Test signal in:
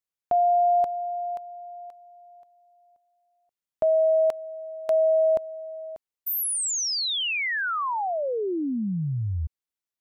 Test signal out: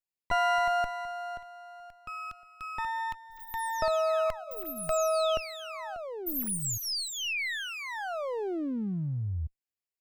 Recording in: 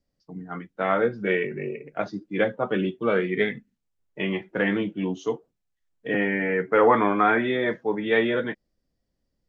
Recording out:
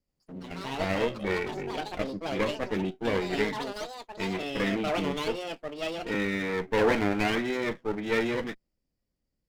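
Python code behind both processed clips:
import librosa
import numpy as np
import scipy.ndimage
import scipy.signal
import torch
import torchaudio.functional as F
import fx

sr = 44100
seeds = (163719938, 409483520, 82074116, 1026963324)

y = fx.lower_of_two(x, sr, delay_ms=0.4)
y = fx.echo_pitch(y, sr, ms=81, semitones=6, count=2, db_per_echo=-6.0)
y = y * librosa.db_to_amplitude(-4.5)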